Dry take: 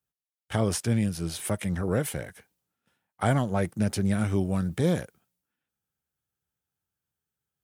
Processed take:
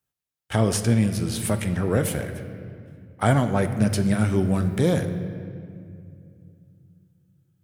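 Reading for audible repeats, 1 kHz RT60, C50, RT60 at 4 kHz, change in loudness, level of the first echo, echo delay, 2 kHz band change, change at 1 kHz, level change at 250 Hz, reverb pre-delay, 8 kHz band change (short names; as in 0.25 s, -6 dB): none, 2.1 s, 9.5 dB, 1.5 s, +4.5 dB, none, none, +4.5 dB, +4.5 dB, +5.0 dB, 3 ms, +4.0 dB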